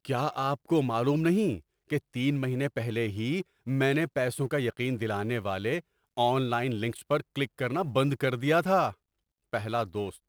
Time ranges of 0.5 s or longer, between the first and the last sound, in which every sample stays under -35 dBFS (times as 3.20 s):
8.91–9.53 s